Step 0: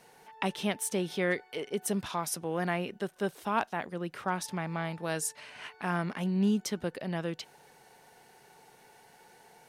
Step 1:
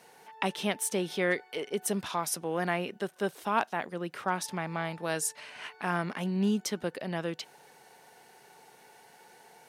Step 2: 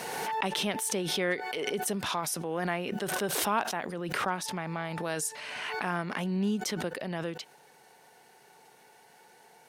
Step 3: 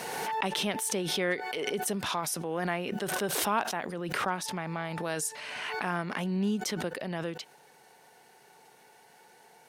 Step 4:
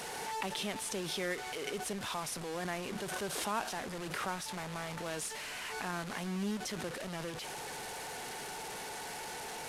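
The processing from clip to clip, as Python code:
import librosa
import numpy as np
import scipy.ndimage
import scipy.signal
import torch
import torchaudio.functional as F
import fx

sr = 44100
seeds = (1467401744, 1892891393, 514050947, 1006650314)

y1 = fx.highpass(x, sr, hz=200.0, slope=6)
y1 = F.gain(torch.from_numpy(y1), 2.0).numpy()
y2 = fx.pre_swell(y1, sr, db_per_s=23.0)
y2 = F.gain(torch.from_numpy(y2), -2.0).numpy()
y3 = y2
y4 = fx.delta_mod(y3, sr, bps=64000, step_db=-29.5)
y4 = F.gain(torch.from_numpy(y4), -7.0).numpy()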